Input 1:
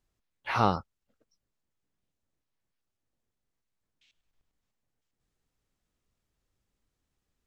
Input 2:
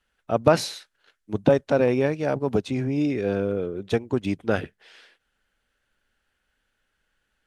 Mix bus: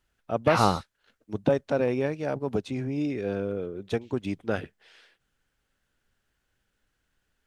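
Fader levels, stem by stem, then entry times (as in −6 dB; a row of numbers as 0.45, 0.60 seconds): +2.5, −5.0 decibels; 0.00, 0.00 seconds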